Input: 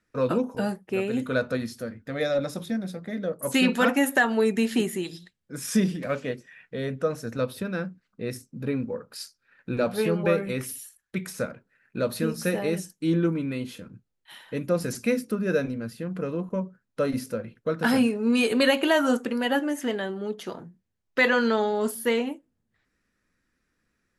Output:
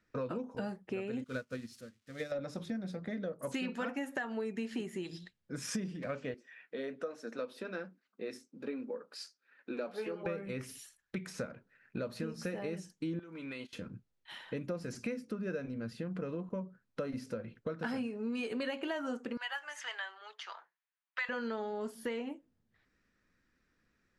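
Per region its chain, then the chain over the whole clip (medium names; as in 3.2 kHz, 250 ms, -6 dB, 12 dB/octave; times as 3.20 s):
1.24–2.32 s: zero-crossing glitches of -28.5 dBFS + peaking EQ 760 Hz -8.5 dB 0.86 oct + upward expansion 2.5:1, over -43 dBFS
6.34–10.26 s: high-pass 250 Hz 24 dB/octave + flange 1.2 Hz, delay 2.5 ms, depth 6.2 ms, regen -58%
13.19–13.73 s: gate -34 dBFS, range -21 dB + high-pass 1 kHz 6 dB/octave + compression 12:1, threshold -36 dBFS
19.37–21.29 s: level-controlled noise filter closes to 2.9 kHz, open at -20.5 dBFS + high-pass 970 Hz 24 dB/octave
whole clip: dynamic bell 3.7 kHz, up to -6 dB, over -53 dBFS, Q 4.8; low-pass 6.1 kHz 12 dB/octave; compression 5:1, threshold -35 dBFS; trim -1 dB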